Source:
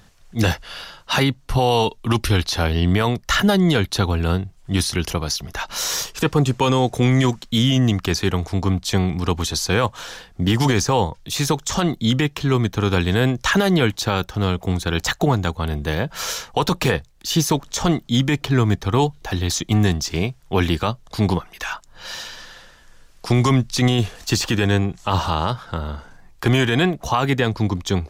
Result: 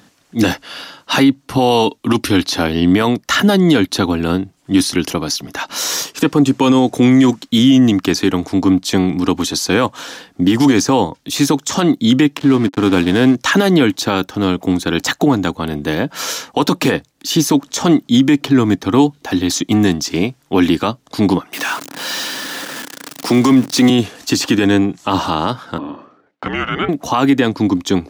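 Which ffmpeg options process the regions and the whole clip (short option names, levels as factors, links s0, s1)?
-filter_complex "[0:a]asettb=1/sr,asplit=3[s0][s1][s2];[s0]atrim=end=12.374[s3];[s1]atrim=start=12.37:end=13.35,asetpts=PTS-STARTPTS,afade=t=in:d=0.004:c=qsin,afade=t=out:st=0.976:d=0.004:c=qsin,aeval=exprs='val(0)*gte(abs(val(0)),0.0447)':c=same,adynamicsmooth=sensitivity=3.5:basefreq=2500[s4];[s2]atrim=start=13.346[s5];[s3][s4]acrossfade=d=0.004:c1=hsin:c2=qsin[s6];[s6][s5]acrossfade=d=0.004:c1=qsin:c2=hsin,asettb=1/sr,asplit=3[s7][s8][s9];[s7]atrim=end=21.534[s10];[s8]atrim=start=21.53:end=23.9,asetpts=PTS-STARTPTS,afade=t=in:d=0.004:c=qsin,afade=t=out:st=2.366:d=0.004:c=qsin,aeval=exprs='val(0)+0.5*0.0531*sgn(val(0))':c=same,highpass=f=130:w=0.5412,highpass=f=130:w=1.3066[s11];[s9]atrim=start=23.896[s12];[s10][s11]acrossfade=d=0.004:c1=hsin:c2=qsin[s13];[s13][s12]acrossfade=d=0.004:c1=qsin:c2=hsin,asettb=1/sr,asplit=3[s14][s15][s16];[s14]atrim=end=25.784[s17];[s15]atrim=start=25.78:end=26.89,asetpts=PTS-STARTPTS,afade=t=in:d=0.004:c=qsin,afade=t=out:st=1.106:d=0.004:c=qsin,agate=range=0.0224:threshold=0.00794:ratio=3:release=100:detection=peak,highpass=350,lowpass=2500,afreqshift=-310[s18];[s16]atrim=start=26.886[s19];[s17][s18]acrossfade=d=0.004:c1=hsin:c2=qsin[s20];[s20][s19]acrossfade=d=0.004:c1=qsin:c2=hsin,highpass=160,equalizer=f=280:t=o:w=0.39:g=13,alimiter=level_in=2:limit=0.891:release=50:level=0:latency=1,volume=0.794"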